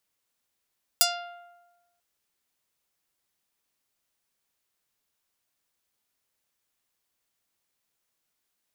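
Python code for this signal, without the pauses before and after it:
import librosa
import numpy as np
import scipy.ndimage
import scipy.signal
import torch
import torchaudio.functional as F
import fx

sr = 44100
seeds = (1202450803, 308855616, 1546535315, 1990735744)

y = fx.pluck(sr, length_s=0.99, note=77, decay_s=1.19, pick=0.35, brightness='medium')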